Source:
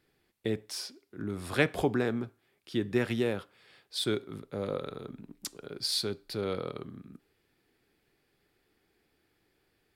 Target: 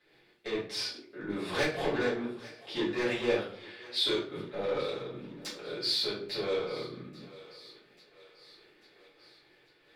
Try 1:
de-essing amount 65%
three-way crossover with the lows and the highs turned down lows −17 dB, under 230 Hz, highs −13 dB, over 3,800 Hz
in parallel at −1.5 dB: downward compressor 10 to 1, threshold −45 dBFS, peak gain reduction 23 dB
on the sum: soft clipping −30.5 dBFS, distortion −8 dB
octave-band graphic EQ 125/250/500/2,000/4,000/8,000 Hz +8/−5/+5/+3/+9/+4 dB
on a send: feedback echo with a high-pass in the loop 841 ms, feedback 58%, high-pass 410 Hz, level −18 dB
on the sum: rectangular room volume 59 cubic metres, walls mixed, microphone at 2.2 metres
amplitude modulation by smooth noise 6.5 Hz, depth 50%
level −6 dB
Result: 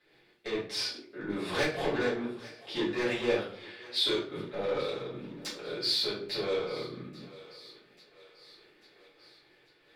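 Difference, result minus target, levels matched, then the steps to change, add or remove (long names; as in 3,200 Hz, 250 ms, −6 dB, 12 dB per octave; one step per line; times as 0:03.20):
downward compressor: peak gain reduction −7 dB
change: downward compressor 10 to 1, threshold −53 dBFS, peak gain reduction 30.5 dB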